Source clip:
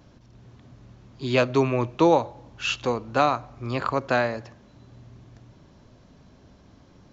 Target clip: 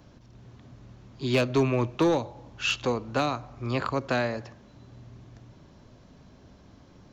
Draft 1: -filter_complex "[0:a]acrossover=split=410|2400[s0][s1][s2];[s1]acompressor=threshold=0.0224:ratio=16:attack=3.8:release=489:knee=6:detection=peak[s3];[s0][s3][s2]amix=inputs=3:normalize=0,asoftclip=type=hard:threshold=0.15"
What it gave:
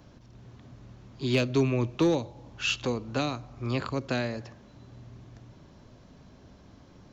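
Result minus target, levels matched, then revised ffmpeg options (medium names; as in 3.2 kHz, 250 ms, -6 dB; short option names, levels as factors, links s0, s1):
compression: peak gain reduction +9 dB
-filter_complex "[0:a]acrossover=split=410|2400[s0][s1][s2];[s1]acompressor=threshold=0.0668:ratio=16:attack=3.8:release=489:knee=6:detection=peak[s3];[s0][s3][s2]amix=inputs=3:normalize=0,asoftclip=type=hard:threshold=0.15"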